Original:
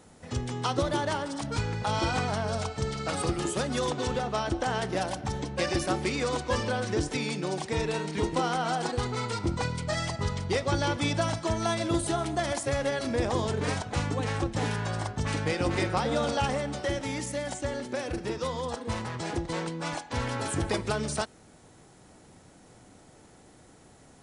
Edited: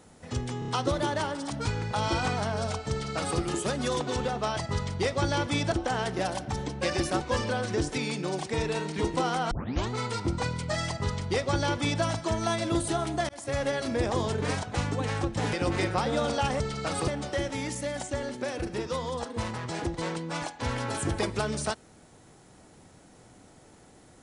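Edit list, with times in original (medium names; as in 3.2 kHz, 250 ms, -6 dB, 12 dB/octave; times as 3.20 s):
0.59 s: stutter 0.03 s, 4 plays
2.82–3.30 s: copy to 16.59 s
5.97–6.40 s: delete
8.70 s: tape start 0.39 s
10.07–11.22 s: copy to 4.48 s
12.48–12.77 s: fade in
14.72–15.52 s: delete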